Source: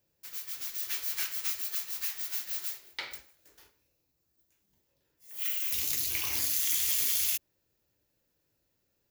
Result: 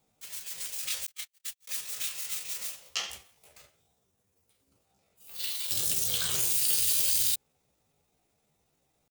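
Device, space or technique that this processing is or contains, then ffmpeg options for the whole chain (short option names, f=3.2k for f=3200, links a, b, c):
chipmunk voice: -filter_complex "[0:a]asettb=1/sr,asplit=3[a][b][c];[a]atrim=end=1.084[d];[b]atrim=start=1.08:end=1.7,asetpts=PTS-STARTPTS,afade=t=in:d=0.004:c=qsin,afade=t=out:st=0.616:d=0.004:c=qsin,agate=range=-52dB:threshold=-29dB:ratio=16:detection=peak[e];[c]atrim=start=1.696[f];[d][e]acrossfade=d=0.004:c1=hsin:c2=qsin[g];[g][f]acrossfade=d=0.004:c1=qsin:c2=hsin,asetrate=62367,aresample=44100,atempo=0.707107,volume=5.5dB"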